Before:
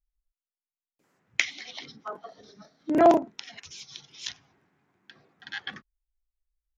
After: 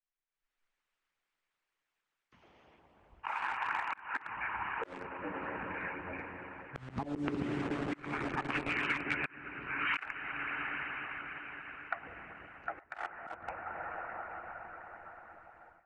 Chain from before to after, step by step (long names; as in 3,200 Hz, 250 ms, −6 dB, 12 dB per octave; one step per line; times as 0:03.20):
dense smooth reverb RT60 2.9 s, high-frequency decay 0.9×, DRR 5.5 dB
in parallel at −11 dB: bit reduction 5 bits
on the sum: wrong playback speed 78 rpm record played at 33 rpm
harmonic and percussive parts rebalanced harmonic −14 dB
volume swells 650 ms
three-way crossover with the lows and the highs turned down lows −16 dB, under 340 Hz, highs −22 dB, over 2,400 Hz
downward compressor 6 to 1, threshold −50 dBFS, peak gain reduction 11 dB
parametric band 570 Hz −11 dB 2.2 octaves
automatic gain control gain up to 15 dB
level +9 dB